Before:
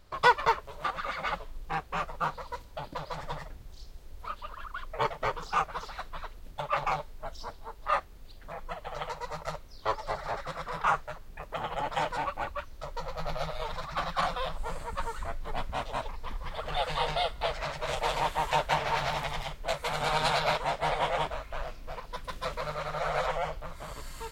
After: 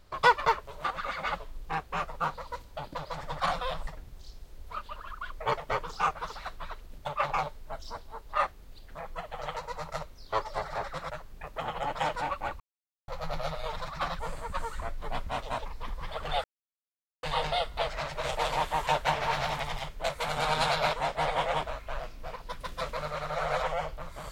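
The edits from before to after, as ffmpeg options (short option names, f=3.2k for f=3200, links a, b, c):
-filter_complex "[0:a]asplit=8[a][b][c][d][e][f][g][h];[a]atrim=end=3.402[i];[b]atrim=start=14.148:end=14.622[j];[c]atrim=start=3.398:end=10.632[k];[d]atrim=start=11.058:end=12.56,asetpts=PTS-STARTPTS,afade=t=out:st=1.498:d=0.004:c=hsin[l];[e]atrim=start=12.56:end=13.04,asetpts=PTS-STARTPTS,volume=0[m];[f]atrim=start=13.04:end=14.152,asetpts=PTS-STARTPTS,afade=t=in:d=0.004:c=hsin[n];[g]atrim=start=14.618:end=16.87,asetpts=PTS-STARTPTS,afade=t=out:st=2.248:d=0.004:c=hsin,apad=pad_dur=0.79[o];[h]atrim=start=16.87,asetpts=PTS-STARTPTS,afade=t=in:d=0.004:c=hsin[p];[i][j]acrossfade=d=0.004:c1=hsin:c2=hsin[q];[q][k]acrossfade=d=0.004:c1=hsin:c2=hsin[r];[l][m][n]concat=n=3:v=0:a=1[s];[r][s]acrossfade=d=0.004:c1=hsin:c2=hsin[t];[o][p]concat=n=2:v=0:a=1[u];[t][u]acrossfade=d=0.004:c1=hsin:c2=hsin"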